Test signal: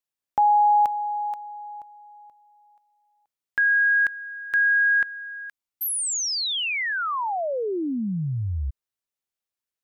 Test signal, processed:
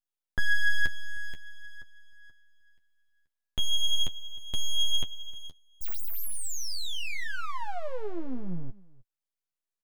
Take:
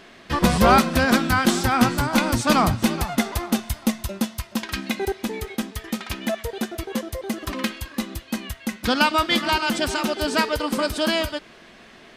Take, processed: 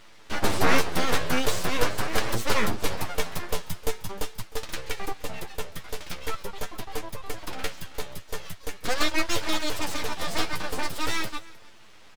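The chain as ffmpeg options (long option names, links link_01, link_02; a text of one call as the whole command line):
ffmpeg -i in.wav -af "aeval=exprs='abs(val(0))':channel_layout=same,aecho=1:1:308:0.0794,flanger=delay=9:depth=2.9:regen=25:speed=0.43:shape=sinusoidal" out.wav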